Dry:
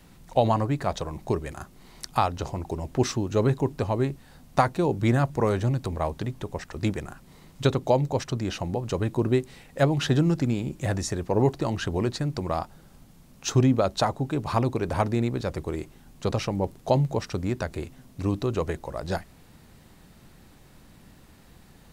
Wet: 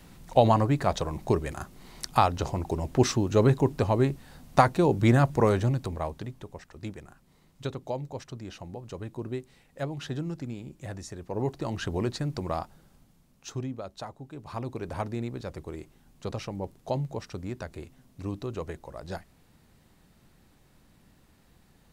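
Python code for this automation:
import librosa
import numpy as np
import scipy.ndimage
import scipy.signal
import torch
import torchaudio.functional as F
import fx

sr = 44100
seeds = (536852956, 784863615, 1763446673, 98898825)

y = fx.gain(x, sr, db=fx.line((5.45, 1.5), (6.7, -11.5), (11.14, -11.5), (11.85, -3.0), (12.53, -3.0), (13.75, -15.5), (14.31, -15.5), (14.8, -8.0)))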